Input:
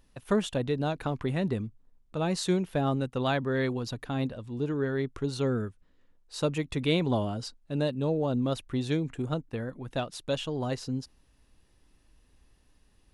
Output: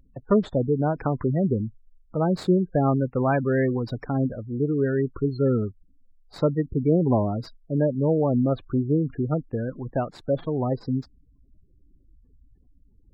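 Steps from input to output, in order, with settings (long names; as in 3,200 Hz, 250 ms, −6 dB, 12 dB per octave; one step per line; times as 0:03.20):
running median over 15 samples
gate on every frequency bin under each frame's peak −20 dB strong
level +6.5 dB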